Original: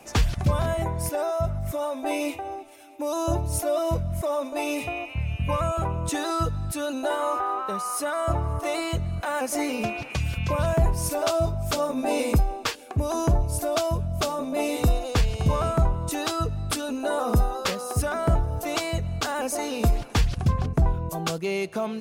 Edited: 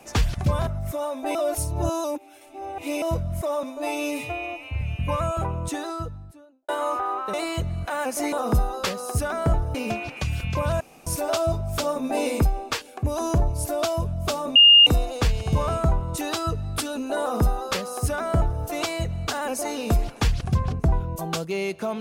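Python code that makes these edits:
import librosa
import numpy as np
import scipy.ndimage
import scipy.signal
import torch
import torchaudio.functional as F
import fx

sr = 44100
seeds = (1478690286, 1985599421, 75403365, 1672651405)

y = fx.studio_fade_out(x, sr, start_s=5.8, length_s=1.29)
y = fx.edit(y, sr, fx.cut(start_s=0.67, length_s=0.8),
    fx.reverse_span(start_s=2.15, length_s=1.67),
    fx.stretch_span(start_s=4.43, length_s=0.79, factor=1.5),
    fx.cut(start_s=7.74, length_s=0.95),
    fx.room_tone_fill(start_s=10.74, length_s=0.26),
    fx.bleep(start_s=14.49, length_s=0.31, hz=2830.0, db=-8.5),
    fx.duplicate(start_s=17.14, length_s=1.42, to_s=9.68), tone=tone)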